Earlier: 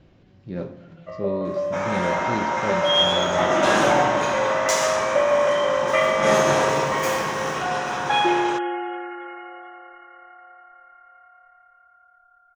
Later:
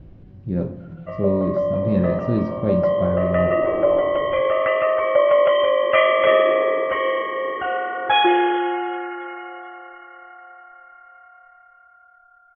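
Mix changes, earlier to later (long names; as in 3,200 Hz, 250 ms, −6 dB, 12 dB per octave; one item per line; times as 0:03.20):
speech: add spectral tilt −3.5 dB per octave
first sound +4.0 dB
second sound: add flat-topped band-pass 410 Hz, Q 1.7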